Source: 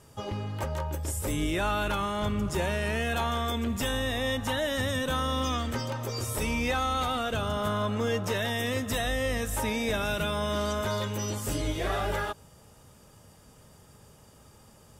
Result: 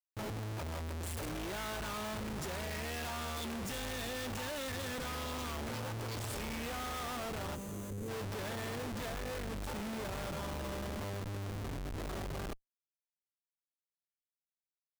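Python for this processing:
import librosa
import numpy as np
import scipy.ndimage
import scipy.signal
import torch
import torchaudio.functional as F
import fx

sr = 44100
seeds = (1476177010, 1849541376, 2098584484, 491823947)

y = fx.doppler_pass(x, sr, speed_mps=14, closest_m=11.0, pass_at_s=3.42)
y = fx.schmitt(y, sr, flips_db=-49.0)
y = fx.spec_box(y, sr, start_s=7.55, length_s=0.54, low_hz=580.0, high_hz=5900.0, gain_db=-11)
y = F.gain(torch.from_numpy(y), -2.0).numpy()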